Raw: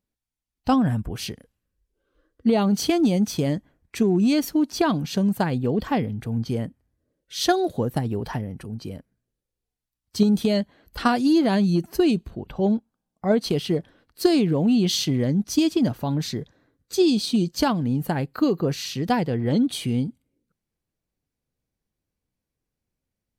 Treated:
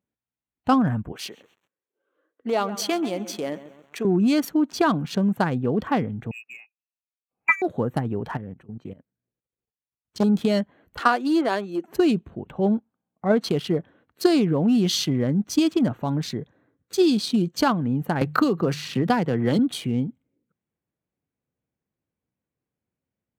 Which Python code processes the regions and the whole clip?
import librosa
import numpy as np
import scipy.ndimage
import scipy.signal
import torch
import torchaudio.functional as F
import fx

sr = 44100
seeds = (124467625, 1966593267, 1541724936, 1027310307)

y = fx.chain(x, sr, fx.highpass(hz=420.0, slope=12),
    fx.echo_crushed(ms=134, feedback_pct=55, bits=7, wet_db=-13.0), at=(1.12, 4.05))
y = fx.chain(y, sr, fx.freq_invert(carrier_hz=2700),
    fx.upward_expand(threshold_db=-38.0, expansion=2.5), at=(6.31, 7.62))
y = fx.chain(y, sr, fx.level_steps(step_db=17),
    fx.doppler_dist(depth_ms=0.83), at=(8.37, 10.24))
y = fx.chain(y, sr, fx.highpass(hz=310.0, slope=24),
    fx.high_shelf(hz=7300.0, db=-4.0), at=(10.99, 11.88))
y = fx.chain(y, sr, fx.hum_notches(base_hz=50, count=3),
    fx.band_squash(depth_pct=100), at=(18.21, 19.59))
y = fx.wiener(y, sr, points=9)
y = fx.dynamic_eq(y, sr, hz=1300.0, q=1.9, threshold_db=-42.0, ratio=4.0, max_db=6)
y = scipy.signal.sosfilt(scipy.signal.butter(2, 100.0, 'highpass', fs=sr, output='sos'), y)